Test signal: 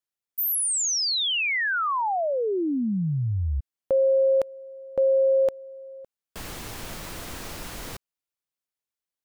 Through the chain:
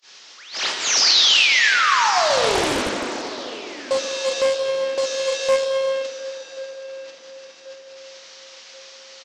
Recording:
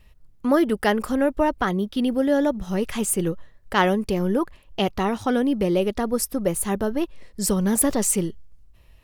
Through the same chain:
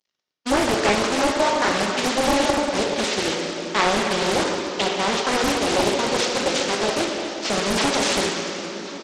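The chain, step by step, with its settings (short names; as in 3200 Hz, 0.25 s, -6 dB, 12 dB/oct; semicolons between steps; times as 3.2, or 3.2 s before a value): delta modulation 32 kbps, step -25 dBFS; HPF 340 Hz 12 dB/oct; gate -29 dBFS, range -49 dB; high shelf 2600 Hz +11 dB; in parallel at +1 dB: limiter -17.5 dBFS; on the sum: flange 0.99 Hz, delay 4.9 ms, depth 3.8 ms, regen -85%; feedback echo 1.084 s, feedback 44%, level -17.5 dB; plate-style reverb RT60 3.4 s, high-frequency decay 0.75×, DRR -0.5 dB; Doppler distortion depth 0.8 ms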